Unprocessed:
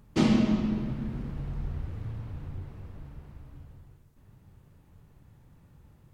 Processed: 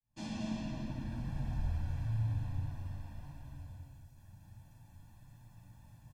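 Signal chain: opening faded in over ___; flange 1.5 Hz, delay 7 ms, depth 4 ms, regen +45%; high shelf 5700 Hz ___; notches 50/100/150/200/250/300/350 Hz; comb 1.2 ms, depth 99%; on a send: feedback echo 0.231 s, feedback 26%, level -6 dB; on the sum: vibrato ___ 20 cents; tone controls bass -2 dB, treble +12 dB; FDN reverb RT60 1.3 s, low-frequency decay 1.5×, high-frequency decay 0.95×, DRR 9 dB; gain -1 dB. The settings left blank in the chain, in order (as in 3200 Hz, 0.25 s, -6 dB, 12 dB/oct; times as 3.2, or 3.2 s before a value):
1.43 s, -8.5 dB, 0.41 Hz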